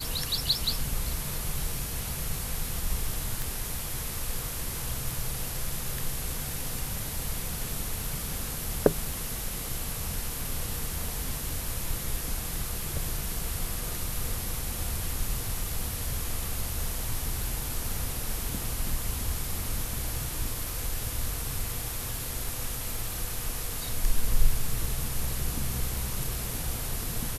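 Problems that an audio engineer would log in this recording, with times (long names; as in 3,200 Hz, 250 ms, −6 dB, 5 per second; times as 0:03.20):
0:03.42: click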